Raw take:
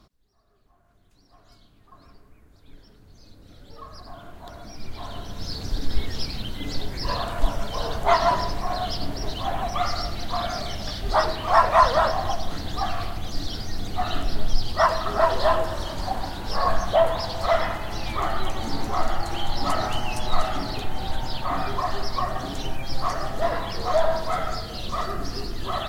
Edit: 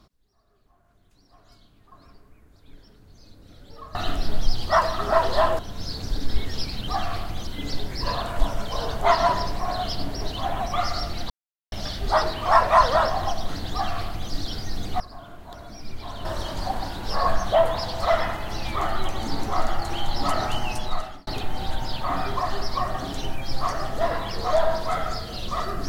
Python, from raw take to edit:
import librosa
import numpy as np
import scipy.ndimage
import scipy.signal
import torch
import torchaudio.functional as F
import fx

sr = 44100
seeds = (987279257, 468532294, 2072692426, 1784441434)

y = fx.edit(x, sr, fx.swap(start_s=3.95, length_s=1.25, other_s=14.02, other_length_s=1.64),
    fx.silence(start_s=10.32, length_s=0.42),
    fx.duplicate(start_s=12.75, length_s=0.59, to_s=6.49),
    fx.fade_out_span(start_s=20.1, length_s=0.58), tone=tone)